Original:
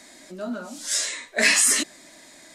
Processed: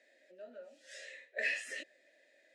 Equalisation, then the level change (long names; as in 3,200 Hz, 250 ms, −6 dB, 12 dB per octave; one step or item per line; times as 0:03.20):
formant filter e
high-pass filter 310 Hz 6 dB per octave
−5.0 dB